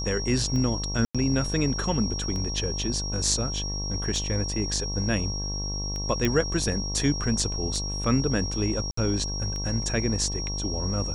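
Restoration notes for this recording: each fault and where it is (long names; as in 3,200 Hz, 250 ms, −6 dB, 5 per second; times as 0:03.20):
mains buzz 50 Hz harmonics 23 −32 dBFS
scratch tick 33 1/3 rpm −21 dBFS
whistle 5,600 Hz −32 dBFS
0:01.05–0:01.15: drop-out 96 ms
0:06.25: click −11 dBFS
0:08.91–0:08.97: drop-out 64 ms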